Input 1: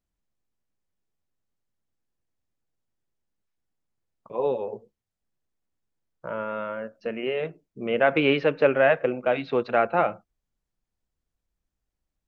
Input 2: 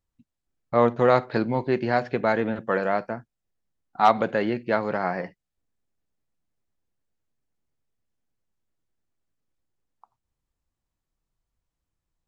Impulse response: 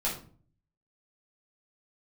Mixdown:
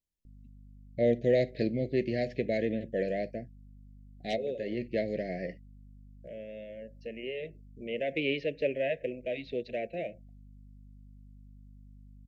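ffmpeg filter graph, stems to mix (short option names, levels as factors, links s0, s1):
-filter_complex "[0:a]highshelf=f=3400:g=7,volume=0.316,asplit=2[s0][s1];[1:a]aeval=exprs='val(0)+0.00501*(sin(2*PI*50*n/s)+sin(2*PI*2*50*n/s)/2+sin(2*PI*3*50*n/s)/3+sin(2*PI*4*50*n/s)/4+sin(2*PI*5*50*n/s)/5)':c=same,adelay=250,volume=0.562[s2];[s1]apad=whole_len=552283[s3];[s2][s3]sidechaincompress=threshold=0.00501:ratio=8:attack=29:release=117[s4];[s0][s4]amix=inputs=2:normalize=0,asuperstop=centerf=1100:order=12:qfactor=0.93"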